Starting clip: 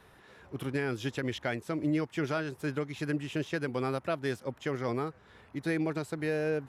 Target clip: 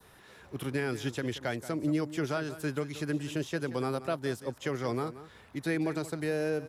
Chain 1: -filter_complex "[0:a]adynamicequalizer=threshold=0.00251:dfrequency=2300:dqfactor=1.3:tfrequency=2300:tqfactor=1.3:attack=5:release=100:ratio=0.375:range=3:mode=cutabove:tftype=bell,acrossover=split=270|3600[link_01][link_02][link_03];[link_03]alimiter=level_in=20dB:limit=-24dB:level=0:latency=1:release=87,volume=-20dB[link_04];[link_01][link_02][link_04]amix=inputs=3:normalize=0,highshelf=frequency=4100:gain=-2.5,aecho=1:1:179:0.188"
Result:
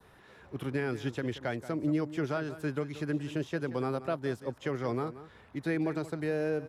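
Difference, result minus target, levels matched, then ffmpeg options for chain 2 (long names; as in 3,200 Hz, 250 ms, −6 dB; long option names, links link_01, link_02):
8,000 Hz band −8.5 dB
-filter_complex "[0:a]adynamicequalizer=threshold=0.00251:dfrequency=2300:dqfactor=1.3:tfrequency=2300:tqfactor=1.3:attack=5:release=100:ratio=0.375:range=3:mode=cutabove:tftype=bell,acrossover=split=270|3600[link_01][link_02][link_03];[link_03]alimiter=level_in=20dB:limit=-24dB:level=0:latency=1:release=87,volume=-20dB[link_04];[link_01][link_02][link_04]amix=inputs=3:normalize=0,highshelf=frequency=4100:gain=9,aecho=1:1:179:0.188"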